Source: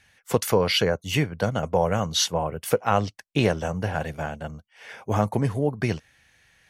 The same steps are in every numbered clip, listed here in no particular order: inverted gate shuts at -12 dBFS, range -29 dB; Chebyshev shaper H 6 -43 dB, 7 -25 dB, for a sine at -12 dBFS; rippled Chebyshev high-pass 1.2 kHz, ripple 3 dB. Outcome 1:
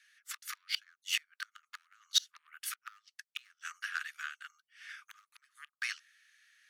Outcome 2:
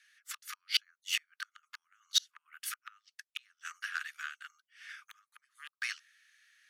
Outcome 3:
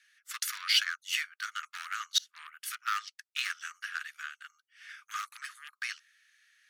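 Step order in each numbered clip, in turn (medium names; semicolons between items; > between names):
Chebyshev shaper > inverted gate > rippled Chebyshev high-pass; inverted gate > Chebyshev shaper > rippled Chebyshev high-pass; Chebyshev shaper > rippled Chebyshev high-pass > inverted gate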